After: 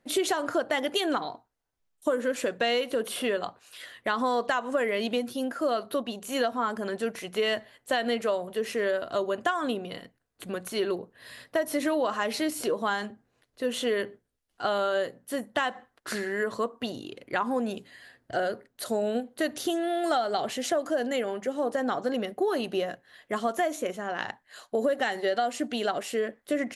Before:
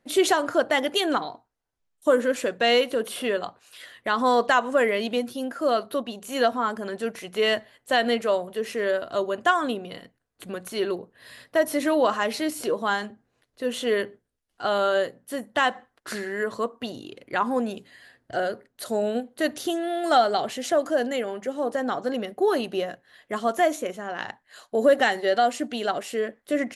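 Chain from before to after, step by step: compression, threshold -23 dBFS, peak gain reduction 9.5 dB

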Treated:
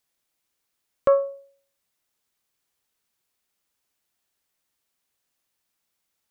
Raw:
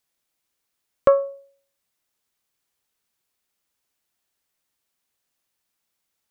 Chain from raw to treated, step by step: peak limiter -10 dBFS, peak gain reduction 5 dB

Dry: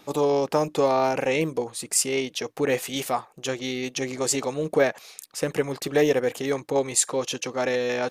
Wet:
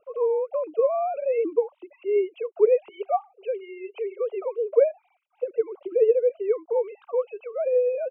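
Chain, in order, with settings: formants replaced by sine waves; 2.89–5.26 s: Chebyshev high-pass 390 Hz, order 8; gain riding within 5 dB 2 s; boxcar filter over 25 samples; trim +1.5 dB

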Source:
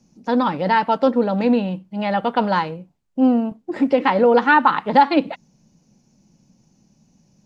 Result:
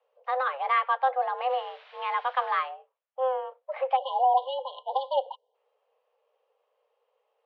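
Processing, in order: 1.49–2.56 s: added noise white -38 dBFS; 3.96–5.54 s: spectral selection erased 790–2600 Hz; mistuned SSB +260 Hz 290–3200 Hz; trim -7 dB

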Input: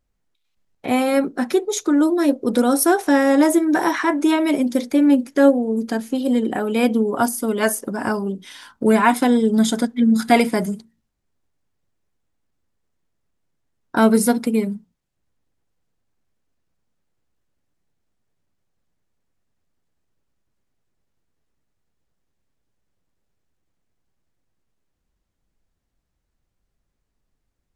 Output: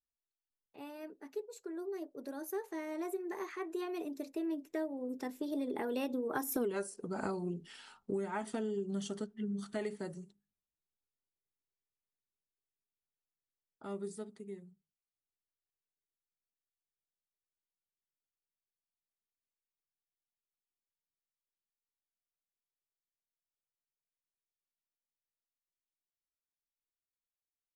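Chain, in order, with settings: Doppler pass-by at 6.66 s, 40 m/s, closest 2 m; peaking EQ 410 Hz +10 dB 0.24 oct; compression 16:1, threshold -45 dBFS, peak gain reduction 30.5 dB; trim +12.5 dB

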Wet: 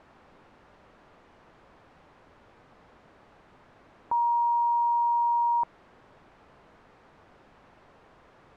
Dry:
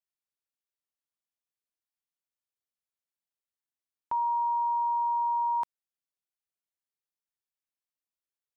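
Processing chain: one-bit delta coder 64 kbps, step -44 dBFS; low-pass 1.1 kHz 12 dB/octave; trim +5 dB

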